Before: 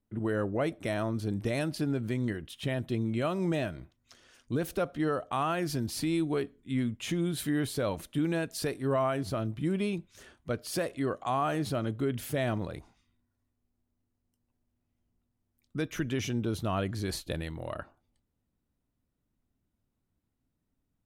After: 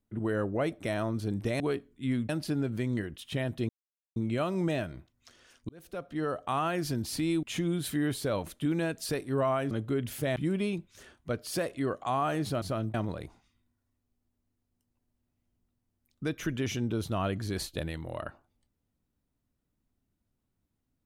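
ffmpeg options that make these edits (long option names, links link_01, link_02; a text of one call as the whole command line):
ffmpeg -i in.wav -filter_complex "[0:a]asplit=10[link_01][link_02][link_03][link_04][link_05][link_06][link_07][link_08][link_09][link_10];[link_01]atrim=end=1.602[link_11];[link_02]atrim=start=6.268:end=6.962[link_12];[link_03]atrim=start=1.598:end=3,asetpts=PTS-STARTPTS,afade=type=out:start_time=1.398:duration=0.004:curve=hsin,apad=pad_dur=0.47[link_13];[link_04]atrim=start=3:end=4.53,asetpts=PTS-STARTPTS,afade=type=in:duration=0.004:curve=hsin,afade=type=out:start_time=1.526:duration=0.004:curve=hsin[link_14];[link_05]atrim=start=4.53:end=6.272,asetpts=PTS-STARTPTS,afade=type=in:duration=0.73[link_15];[link_06]atrim=start=6.958:end=9.242[link_16];[link_07]atrim=start=11.818:end=12.472[link_17];[link_08]atrim=start=9.558:end=11.822[link_18];[link_09]atrim=start=9.238:end=9.562[link_19];[link_10]atrim=start=12.468[link_20];[link_11][link_12]acrossfade=duration=0.004:curve1=hsin:curve2=hsin[link_21];[link_13][link_14][link_15]concat=n=3:v=0:a=1[link_22];[link_21][link_22]acrossfade=duration=0.004:curve1=hsin:curve2=hsin[link_23];[link_23][link_16]acrossfade=duration=0.004:curve1=hsin:curve2=hsin[link_24];[link_24][link_17]acrossfade=duration=0.004:curve1=hsin:curve2=hsin[link_25];[link_25][link_18]acrossfade=duration=0.004:curve1=hsin:curve2=hsin[link_26];[link_26][link_19]acrossfade=duration=0.004:curve1=hsin:curve2=hsin[link_27];[link_27][link_20]acrossfade=duration=0.004:curve1=hsin:curve2=hsin" out.wav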